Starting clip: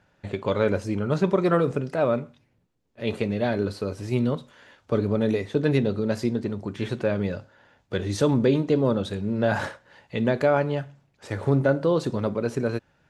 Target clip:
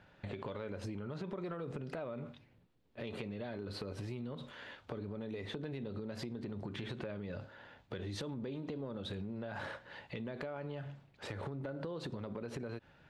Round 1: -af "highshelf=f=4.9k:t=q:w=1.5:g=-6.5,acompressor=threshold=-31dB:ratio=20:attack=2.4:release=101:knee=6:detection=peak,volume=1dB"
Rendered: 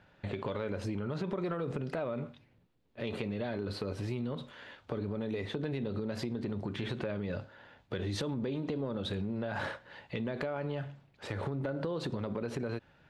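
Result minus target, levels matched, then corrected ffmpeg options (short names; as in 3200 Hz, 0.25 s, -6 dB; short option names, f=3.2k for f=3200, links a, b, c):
compressor: peak gain reduction -6.5 dB
-af "highshelf=f=4.9k:t=q:w=1.5:g=-6.5,acompressor=threshold=-38dB:ratio=20:attack=2.4:release=101:knee=6:detection=peak,volume=1dB"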